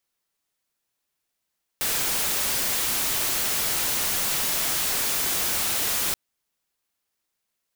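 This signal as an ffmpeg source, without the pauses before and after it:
-f lavfi -i "anoisesrc=c=white:a=0.0974:d=4.33:r=44100:seed=1"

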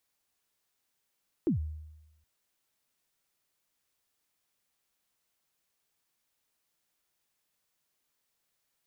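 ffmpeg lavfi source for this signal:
-f lavfi -i "aevalsrc='0.0794*pow(10,-3*t/1)*sin(2*PI*(380*0.117/log(77/380)*(exp(log(77/380)*min(t,0.117)/0.117)-1)+77*max(t-0.117,0)))':d=0.77:s=44100"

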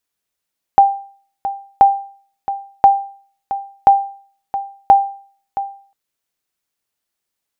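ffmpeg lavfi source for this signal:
-f lavfi -i "aevalsrc='0.891*(sin(2*PI*792*mod(t,1.03))*exp(-6.91*mod(t,1.03)/0.47)+0.224*sin(2*PI*792*max(mod(t,1.03)-0.67,0))*exp(-6.91*max(mod(t,1.03)-0.67,0)/0.47))':d=5.15:s=44100"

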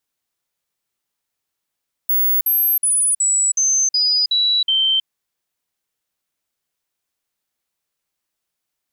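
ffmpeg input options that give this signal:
-f lavfi -i "aevalsrc='0.211*clip(min(mod(t,0.37),0.32-mod(t,0.37))/0.005,0,1)*sin(2*PI*15700*pow(2,-floor(t/0.37)/3)*mod(t,0.37))':d=2.96:s=44100"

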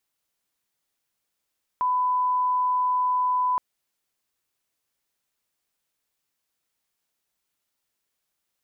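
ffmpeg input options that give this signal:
-f lavfi -i "sine=f=1000:d=1.77:r=44100,volume=-1.94dB"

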